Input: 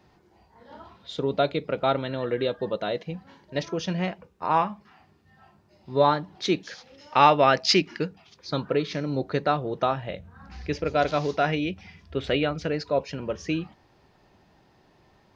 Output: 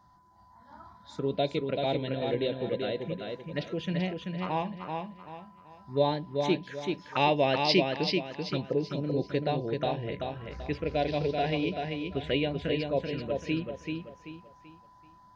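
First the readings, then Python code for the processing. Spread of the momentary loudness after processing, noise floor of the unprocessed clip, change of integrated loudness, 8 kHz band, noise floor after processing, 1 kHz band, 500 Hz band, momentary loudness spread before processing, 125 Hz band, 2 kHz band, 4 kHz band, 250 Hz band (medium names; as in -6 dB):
12 LU, -61 dBFS, -5.0 dB, no reading, -57 dBFS, -8.0 dB, -3.5 dB, 17 LU, -1.5 dB, -5.0 dB, -3.5 dB, -2.0 dB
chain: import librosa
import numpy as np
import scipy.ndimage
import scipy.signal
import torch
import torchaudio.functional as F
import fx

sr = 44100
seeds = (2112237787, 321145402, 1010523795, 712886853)

p1 = fx.env_phaser(x, sr, low_hz=420.0, high_hz=1300.0, full_db=-23.0)
p2 = fx.spec_erase(p1, sr, start_s=8.7, length_s=0.34, low_hz=1300.0, high_hz=5000.0)
p3 = p2 + 10.0 ** (-58.0 / 20.0) * np.sin(2.0 * np.pi * 1000.0 * np.arange(len(p2)) / sr)
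p4 = p3 + fx.echo_feedback(p3, sr, ms=385, feedback_pct=34, wet_db=-4.5, dry=0)
y = p4 * librosa.db_to_amplitude(-2.5)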